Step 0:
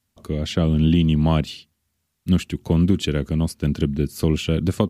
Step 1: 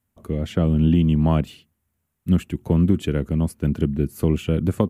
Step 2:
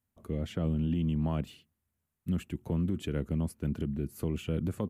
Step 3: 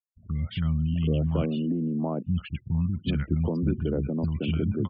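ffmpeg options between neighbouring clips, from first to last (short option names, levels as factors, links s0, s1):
-af "equalizer=f=4600:t=o:w=1.4:g=-14"
-af "alimiter=limit=0.211:level=0:latency=1:release=33,volume=0.376"
-filter_complex "[0:a]afftfilt=real='re*gte(hypot(re,im),0.00447)':imag='im*gte(hypot(re,im),0.00447)':win_size=1024:overlap=0.75,acrossover=split=190|1100[s0][s1][s2];[s2]adelay=50[s3];[s1]adelay=780[s4];[s0][s4][s3]amix=inputs=3:normalize=0,aresample=11025,aresample=44100,volume=2.51"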